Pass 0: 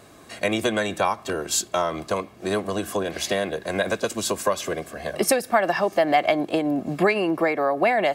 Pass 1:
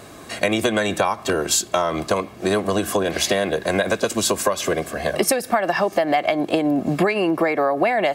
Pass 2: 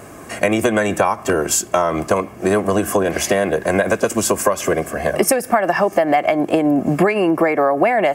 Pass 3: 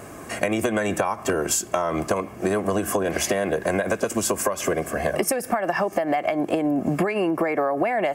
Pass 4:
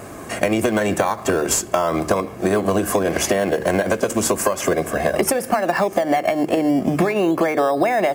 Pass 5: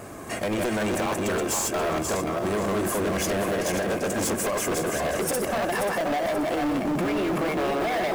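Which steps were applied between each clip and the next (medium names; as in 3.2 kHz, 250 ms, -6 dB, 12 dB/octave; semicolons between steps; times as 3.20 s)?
compression 5:1, threshold -24 dBFS, peak gain reduction 10 dB; trim +8 dB
peaking EQ 3.9 kHz -15 dB 0.58 oct; trim +4 dB
compression, threshold -17 dBFS, peak gain reduction 8 dB; trim -2 dB
de-hum 76.53 Hz, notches 7; in parallel at -11.5 dB: decimation with a swept rate 14×, swing 60% 0.35 Hz; on the sum: trim +3 dB
backward echo that repeats 266 ms, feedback 49%, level -2.5 dB; overload inside the chain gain 18.5 dB; trim -4.5 dB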